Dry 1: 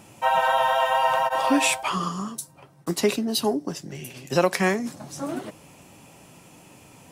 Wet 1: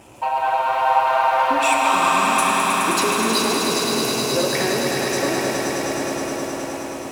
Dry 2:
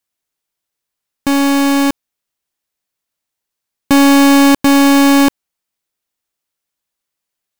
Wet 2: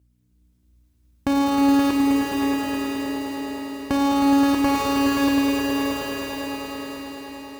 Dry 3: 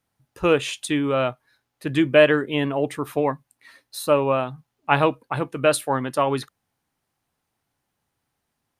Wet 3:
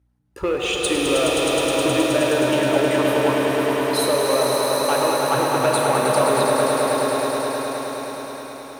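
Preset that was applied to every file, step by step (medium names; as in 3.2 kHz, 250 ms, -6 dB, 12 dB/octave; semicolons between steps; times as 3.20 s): resonances exaggerated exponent 1.5; compression 12:1, threshold -24 dBFS; waveshaping leveller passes 2; hum 60 Hz, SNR 34 dB; high-pass 52 Hz; peaking EQ 170 Hz -11.5 dB 0.9 oct; on a send: echo with a slow build-up 105 ms, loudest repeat 5, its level -6.5 dB; on the sum: pitch-shifted reverb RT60 3.8 s, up +7 st, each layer -8 dB, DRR 1 dB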